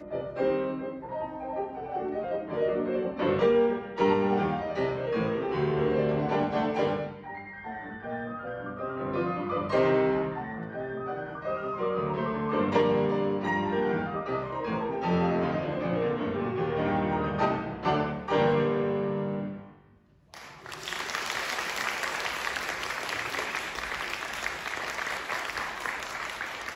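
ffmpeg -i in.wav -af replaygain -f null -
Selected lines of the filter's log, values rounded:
track_gain = +9.8 dB
track_peak = 0.188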